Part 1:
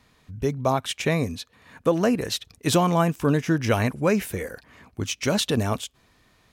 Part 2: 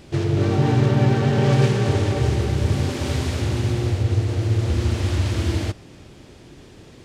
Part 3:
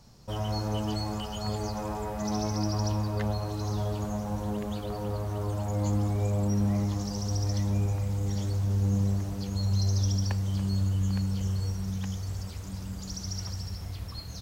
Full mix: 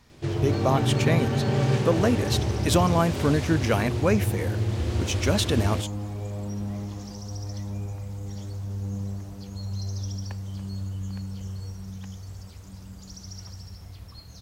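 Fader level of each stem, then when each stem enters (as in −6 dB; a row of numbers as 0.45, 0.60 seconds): −1.5, −6.0, −5.5 decibels; 0.00, 0.10, 0.00 seconds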